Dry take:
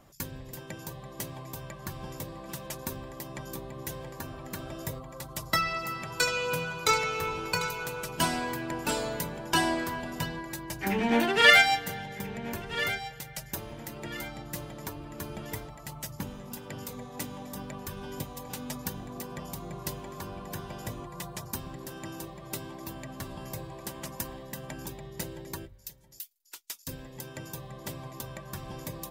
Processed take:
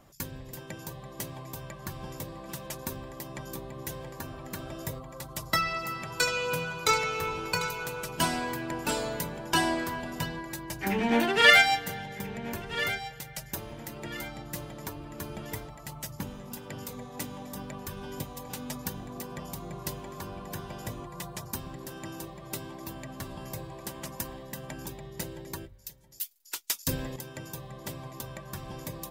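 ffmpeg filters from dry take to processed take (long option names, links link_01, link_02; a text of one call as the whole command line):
ffmpeg -i in.wav -filter_complex "[0:a]asplit=3[link_01][link_02][link_03];[link_01]atrim=end=26.212[link_04];[link_02]atrim=start=26.208:end=27.162,asetpts=PTS-STARTPTS,volume=9.5dB[link_05];[link_03]atrim=start=27.158[link_06];[link_04][link_05]acrossfade=duration=0.004:curve1=hsin:curve2=hsin[link_07];[link_07][link_06]acrossfade=duration=0.004:curve1=hsin:curve2=hsin" out.wav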